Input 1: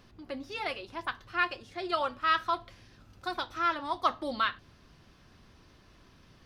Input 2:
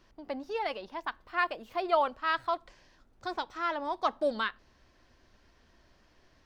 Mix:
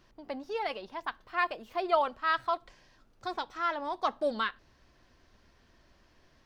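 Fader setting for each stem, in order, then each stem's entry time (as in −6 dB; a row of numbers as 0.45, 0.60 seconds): −14.0, −0.5 decibels; 0.00, 0.00 seconds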